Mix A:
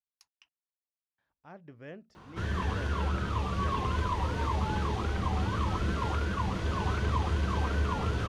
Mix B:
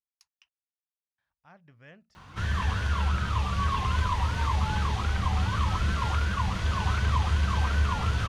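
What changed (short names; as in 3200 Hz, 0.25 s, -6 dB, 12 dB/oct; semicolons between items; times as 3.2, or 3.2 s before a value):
background +6.0 dB; master: add bell 360 Hz -13.5 dB 1.7 oct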